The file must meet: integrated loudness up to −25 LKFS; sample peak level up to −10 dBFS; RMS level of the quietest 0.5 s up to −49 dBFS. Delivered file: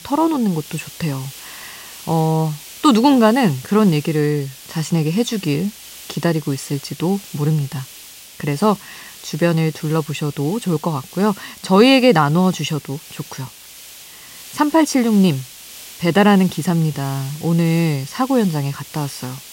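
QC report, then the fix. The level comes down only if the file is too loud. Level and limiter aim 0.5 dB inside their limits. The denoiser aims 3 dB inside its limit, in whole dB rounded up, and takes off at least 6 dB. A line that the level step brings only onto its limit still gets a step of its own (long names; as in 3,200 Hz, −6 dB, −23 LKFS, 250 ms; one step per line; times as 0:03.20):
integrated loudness −18.0 LKFS: out of spec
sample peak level −1.5 dBFS: out of spec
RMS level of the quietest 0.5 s −40 dBFS: out of spec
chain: broadband denoise 6 dB, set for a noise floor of −40 dBFS
level −7.5 dB
brickwall limiter −10.5 dBFS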